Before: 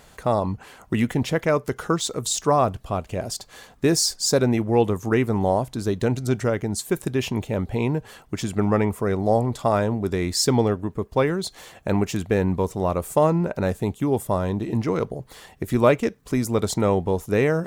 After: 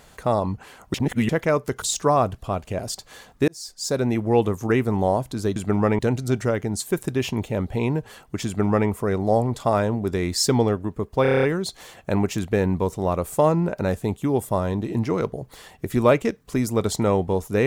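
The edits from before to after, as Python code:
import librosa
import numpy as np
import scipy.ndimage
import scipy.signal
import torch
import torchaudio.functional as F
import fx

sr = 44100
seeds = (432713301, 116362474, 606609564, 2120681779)

y = fx.edit(x, sr, fx.reverse_span(start_s=0.94, length_s=0.35),
    fx.cut(start_s=1.82, length_s=0.42),
    fx.fade_in_span(start_s=3.9, length_s=0.76),
    fx.duplicate(start_s=8.45, length_s=0.43, to_s=5.98),
    fx.stutter(start_s=11.21, slice_s=0.03, count=8), tone=tone)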